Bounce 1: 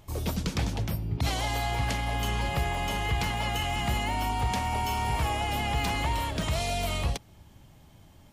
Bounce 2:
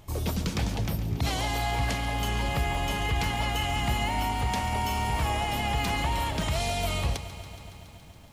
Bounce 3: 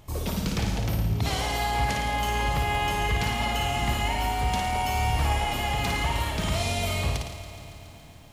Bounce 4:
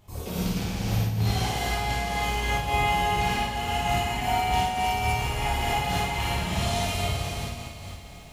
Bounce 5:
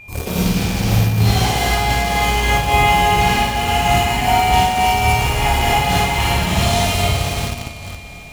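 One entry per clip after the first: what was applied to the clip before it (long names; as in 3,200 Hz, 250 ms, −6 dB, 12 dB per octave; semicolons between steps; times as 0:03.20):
in parallel at −1.5 dB: brickwall limiter −25 dBFS, peak gain reduction 7 dB; on the sum: feedback echo at a low word length 140 ms, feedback 80%, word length 9 bits, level −14 dB; level −3 dB
flutter between parallel walls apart 9.5 metres, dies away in 0.75 s
dense smooth reverb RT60 2.7 s, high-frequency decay 1×, DRR −9 dB; amplitude modulation by smooth noise, depth 60%; level −7 dB
steady tone 2,400 Hz −45 dBFS; in parallel at −8.5 dB: bit reduction 5 bits; on the sum: level +7.5 dB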